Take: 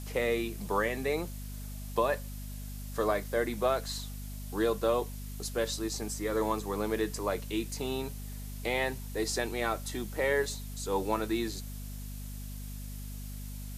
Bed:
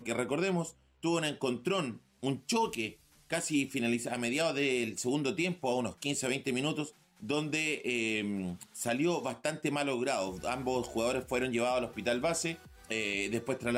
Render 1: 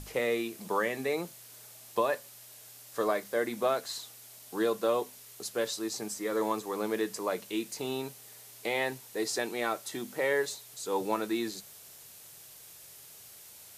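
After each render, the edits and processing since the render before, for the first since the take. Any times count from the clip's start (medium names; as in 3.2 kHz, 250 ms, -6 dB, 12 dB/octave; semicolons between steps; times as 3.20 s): hum notches 50/100/150/200/250 Hz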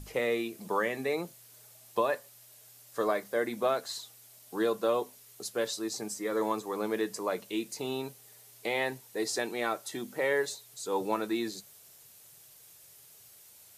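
noise reduction 6 dB, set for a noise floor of -52 dBFS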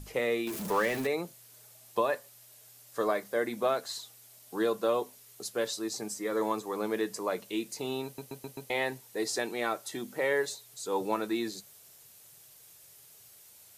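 0.47–1.07 s: jump at every zero crossing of -34 dBFS; 8.05 s: stutter in place 0.13 s, 5 plays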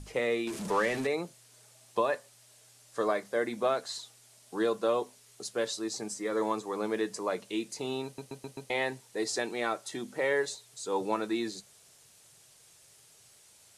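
low-pass 10 kHz 24 dB/octave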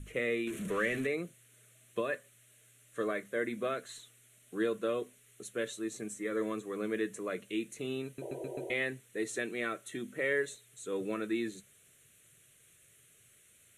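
8.21–8.74 s: painted sound noise 330–980 Hz -35 dBFS; static phaser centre 2.1 kHz, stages 4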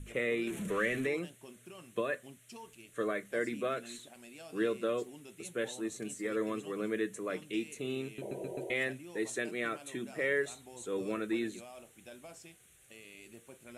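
add bed -20 dB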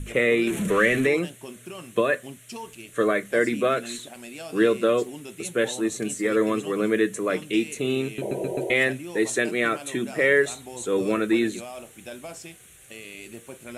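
trim +12 dB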